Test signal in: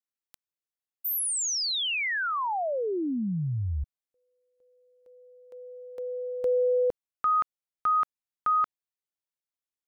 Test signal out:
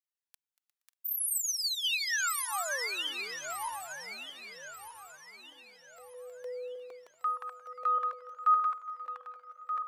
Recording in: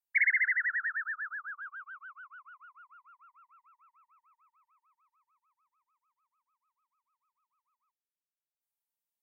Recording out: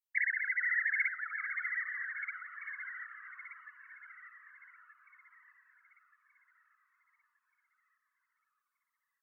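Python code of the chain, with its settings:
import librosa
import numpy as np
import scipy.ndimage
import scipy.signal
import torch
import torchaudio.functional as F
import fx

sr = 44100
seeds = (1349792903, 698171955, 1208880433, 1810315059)

p1 = fx.reverse_delay_fb(x, sr, ms=614, feedback_pct=60, wet_db=-3)
p2 = scipy.signal.sosfilt(scipy.signal.butter(2, 1000.0, 'highpass', fs=sr, output='sos'), p1)
p3 = p2 + fx.echo_heads(p2, sr, ms=118, heads='second and third', feedback_pct=58, wet_db=-17.0, dry=0)
y = fx.comb_cascade(p3, sr, direction='falling', hz=0.56)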